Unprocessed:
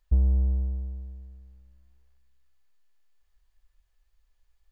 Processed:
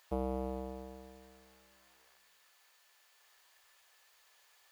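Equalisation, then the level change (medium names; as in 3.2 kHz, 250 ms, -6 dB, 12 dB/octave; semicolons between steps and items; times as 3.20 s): high-pass 610 Hz 12 dB/octave; +17.0 dB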